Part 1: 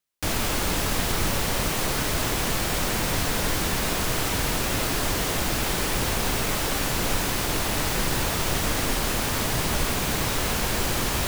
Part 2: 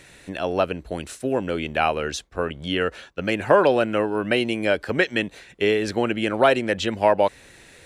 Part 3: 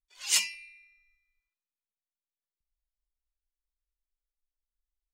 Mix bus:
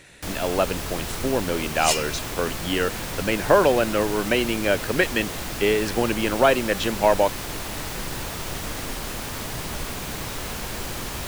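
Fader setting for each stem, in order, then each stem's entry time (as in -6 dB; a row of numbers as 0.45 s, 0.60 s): -6.0 dB, -0.5 dB, +1.5 dB; 0.00 s, 0.00 s, 1.55 s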